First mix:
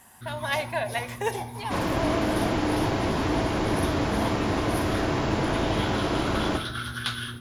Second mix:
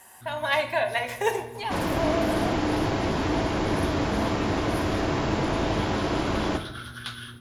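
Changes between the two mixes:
speech: send +11.0 dB; first sound -6.0 dB

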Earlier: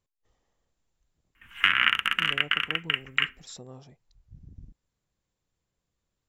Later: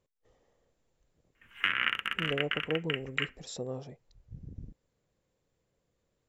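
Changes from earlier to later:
background -10.0 dB; master: add ten-band graphic EQ 125 Hz +4 dB, 250 Hz +3 dB, 500 Hz +11 dB, 2 kHz +3 dB

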